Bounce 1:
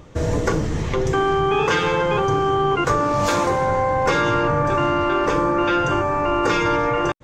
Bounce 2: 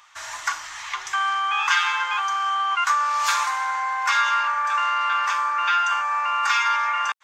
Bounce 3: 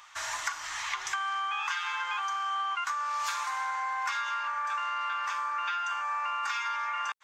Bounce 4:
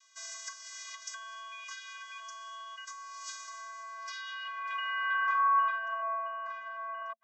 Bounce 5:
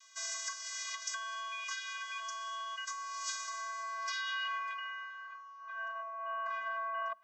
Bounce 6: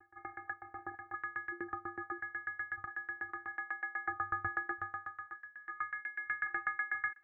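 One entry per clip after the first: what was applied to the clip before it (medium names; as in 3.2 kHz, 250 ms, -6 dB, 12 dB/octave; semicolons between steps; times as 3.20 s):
inverse Chebyshev high-pass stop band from 510 Hz, stop band 40 dB; trim +2.5 dB
compression 12:1, threshold -29 dBFS, peak gain reduction 14 dB
vocoder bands 32, square 223 Hz; band-pass sweep 6.3 kHz -> 490 Hz, 3.90–6.34 s; trim +8 dB
compressor with a negative ratio -40 dBFS, ratio -1; on a send at -23.5 dB: reverberation RT60 4.8 s, pre-delay 47 ms
frequency inversion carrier 2.8 kHz; sawtooth tremolo in dB decaying 8.1 Hz, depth 25 dB; trim +7.5 dB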